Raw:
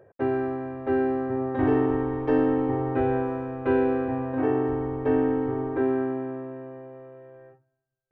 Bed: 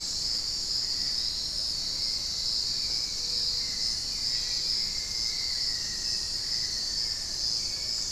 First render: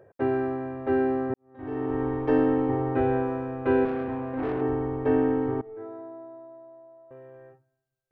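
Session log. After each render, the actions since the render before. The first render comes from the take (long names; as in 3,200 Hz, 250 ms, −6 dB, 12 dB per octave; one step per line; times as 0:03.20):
0:01.34–0:02.06: fade in quadratic
0:03.85–0:04.62: tube saturation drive 24 dB, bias 0.4
0:05.61–0:07.11: tuned comb filter 110 Hz, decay 0.92 s, mix 100%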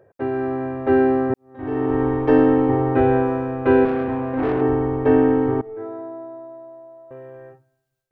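automatic gain control gain up to 8 dB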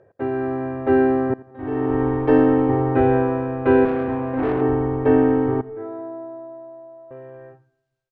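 high-frequency loss of the air 83 metres
repeating echo 85 ms, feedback 41%, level −20 dB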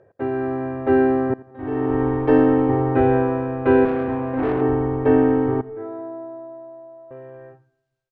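no processing that can be heard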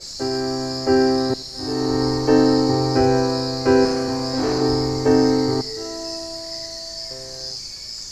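mix in bed −2 dB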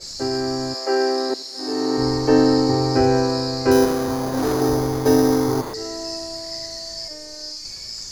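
0:00.73–0:01.97: high-pass filter 460 Hz → 180 Hz 24 dB per octave
0:03.71–0:05.74: bad sample-rate conversion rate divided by 8×, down none, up hold
0:07.08–0:07.65: phases set to zero 304 Hz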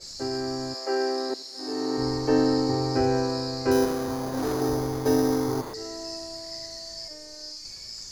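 level −6.5 dB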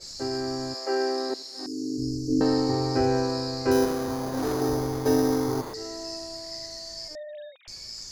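0:01.66–0:02.41: elliptic band-stop filter 320–5,700 Hz, stop band 60 dB
0:07.15–0:07.68: three sine waves on the formant tracks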